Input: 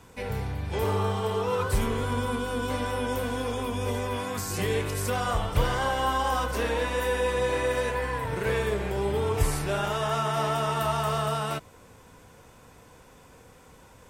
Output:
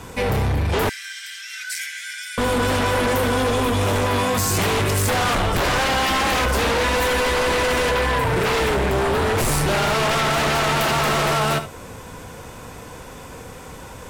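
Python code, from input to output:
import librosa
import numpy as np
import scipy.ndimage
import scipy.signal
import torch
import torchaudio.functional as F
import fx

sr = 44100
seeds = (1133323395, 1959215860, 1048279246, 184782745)

p1 = x + fx.echo_single(x, sr, ms=73, db=-15.0, dry=0)
p2 = 10.0 ** (-16.5 / 20.0) * np.tanh(p1 / 10.0 ** (-16.5 / 20.0))
p3 = fx.cheby_ripple_highpass(p2, sr, hz=1500.0, ripple_db=9, at=(0.89, 2.38))
y = fx.fold_sine(p3, sr, drive_db=11, ceiling_db=-16.5)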